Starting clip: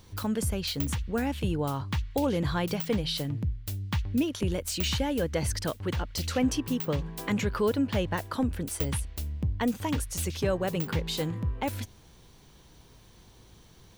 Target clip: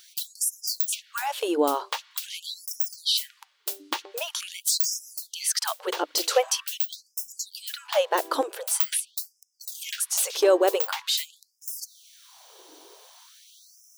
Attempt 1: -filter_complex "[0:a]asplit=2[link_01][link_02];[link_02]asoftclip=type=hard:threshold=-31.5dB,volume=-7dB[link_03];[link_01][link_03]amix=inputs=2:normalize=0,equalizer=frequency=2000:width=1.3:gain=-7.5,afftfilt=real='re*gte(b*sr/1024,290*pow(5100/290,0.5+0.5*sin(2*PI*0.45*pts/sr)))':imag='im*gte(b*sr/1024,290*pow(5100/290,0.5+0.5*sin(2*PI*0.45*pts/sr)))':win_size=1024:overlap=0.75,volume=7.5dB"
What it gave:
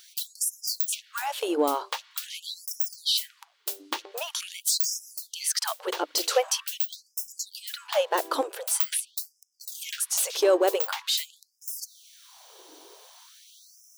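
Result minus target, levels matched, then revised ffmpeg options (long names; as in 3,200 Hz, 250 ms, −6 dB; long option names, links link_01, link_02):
hard clipping: distortion +20 dB
-filter_complex "[0:a]asplit=2[link_01][link_02];[link_02]asoftclip=type=hard:threshold=-20dB,volume=-7dB[link_03];[link_01][link_03]amix=inputs=2:normalize=0,equalizer=frequency=2000:width=1.3:gain=-7.5,afftfilt=real='re*gte(b*sr/1024,290*pow(5100/290,0.5+0.5*sin(2*PI*0.45*pts/sr)))':imag='im*gte(b*sr/1024,290*pow(5100/290,0.5+0.5*sin(2*PI*0.45*pts/sr)))':win_size=1024:overlap=0.75,volume=7.5dB"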